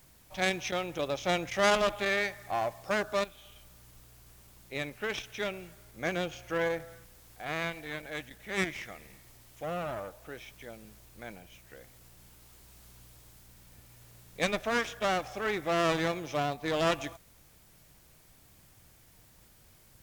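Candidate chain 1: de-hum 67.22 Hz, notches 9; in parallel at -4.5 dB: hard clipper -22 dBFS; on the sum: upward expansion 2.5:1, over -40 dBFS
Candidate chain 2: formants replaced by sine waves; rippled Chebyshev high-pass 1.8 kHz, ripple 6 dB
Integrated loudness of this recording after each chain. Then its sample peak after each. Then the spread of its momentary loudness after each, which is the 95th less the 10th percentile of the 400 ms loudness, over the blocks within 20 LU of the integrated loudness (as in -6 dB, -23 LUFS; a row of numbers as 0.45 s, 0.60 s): -34.5 LUFS, -44.5 LUFS; -9.0 dBFS, -29.0 dBFS; 17 LU, 19 LU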